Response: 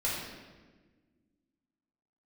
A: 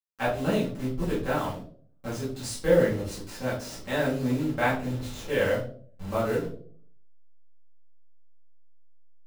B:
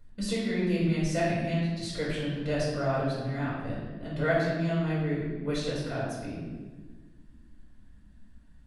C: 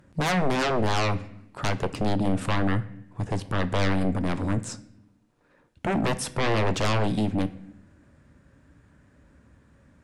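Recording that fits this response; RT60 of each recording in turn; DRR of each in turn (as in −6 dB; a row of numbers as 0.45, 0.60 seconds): B; 0.55 s, 1.4 s, non-exponential decay; −9.5, −7.0, 11.5 decibels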